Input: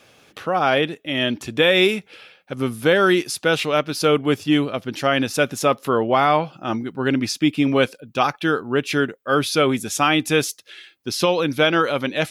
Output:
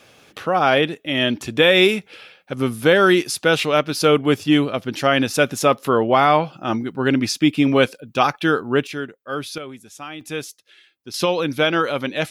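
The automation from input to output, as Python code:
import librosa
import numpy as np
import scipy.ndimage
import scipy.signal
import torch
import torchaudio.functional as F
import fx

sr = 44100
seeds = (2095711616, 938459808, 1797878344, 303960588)

y = fx.gain(x, sr, db=fx.steps((0.0, 2.0), (8.87, -8.0), (9.58, -16.5), (10.21, -9.5), (11.14, -1.0)))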